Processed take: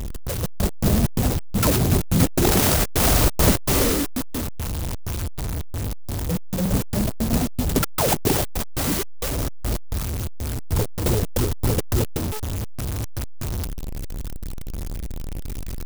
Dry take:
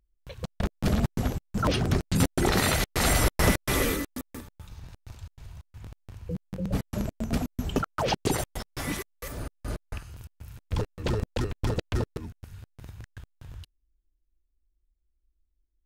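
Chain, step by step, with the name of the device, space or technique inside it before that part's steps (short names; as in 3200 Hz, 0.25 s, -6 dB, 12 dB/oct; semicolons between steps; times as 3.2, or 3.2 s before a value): 12.04–12.72 de-hum 429.9 Hz, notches 17; early CD player with a faulty converter (zero-crossing step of -25 dBFS; clock jitter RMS 0.14 ms); gain +3.5 dB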